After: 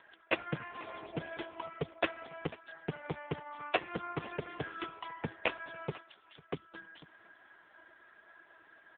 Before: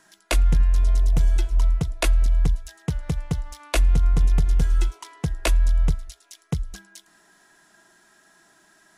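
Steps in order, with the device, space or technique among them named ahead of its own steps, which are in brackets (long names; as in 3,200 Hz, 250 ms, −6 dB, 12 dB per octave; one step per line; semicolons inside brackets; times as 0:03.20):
0:02.20–0:03.05: dynamic equaliser 8,900 Hz, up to −3 dB, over −53 dBFS, Q 0.78
satellite phone (band-pass filter 320–3,300 Hz; single-tap delay 497 ms −21 dB; level +3.5 dB; AMR narrowband 4.75 kbit/s 8,000 Hz)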